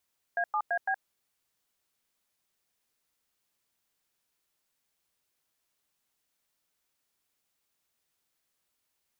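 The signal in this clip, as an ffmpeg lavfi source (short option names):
-f lavfi -i "aevalsrc='0.0376*clip(min(mod(t,0.168),0.07-mod(t,0.168))/0.002,0,1)*(eq(floor(t/0.168),0)*(sin(2*PI*697*mod(t,0.168))+sin(2*PI*1633*mod(t,0.168)))+eq(floor(t/0.168),1)*(sin(2*PI*852*mod(t,0.168))+sin(2*PI*1209*mod(t,0.168)))+eq(floor(t/0.168),2)*(sin(2*PI*697*mod(t,0.168))+sin(2*PI*1633*mod(t,0.168)))+eq(floor(t/0.168),3)*(sin(2*PI*770*mod(t,0.168))+sin(2*PI*1633*mod(t,0.168))))':d=0.672:s=44100"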